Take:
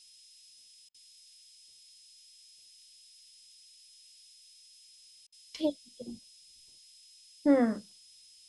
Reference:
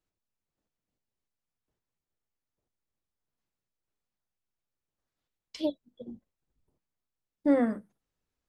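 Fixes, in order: band-stop 5.1 kHz, Q 30; interpolate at 0.89/5.27 s, 52 ms; noise print and reduce 30 dB

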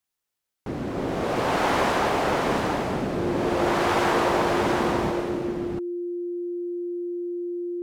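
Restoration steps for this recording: band-stop 350 Hz, Q 30; inverse comb 678 ms -3.5 dB

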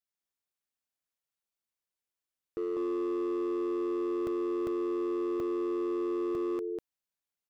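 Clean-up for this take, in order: clip repair -29 dBFS; interpolate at 1.00/1.43/4.27/4.67/5.40/6.35/7.16 s, 1.7 ms; inverse comb 197 ms -3.5 dB

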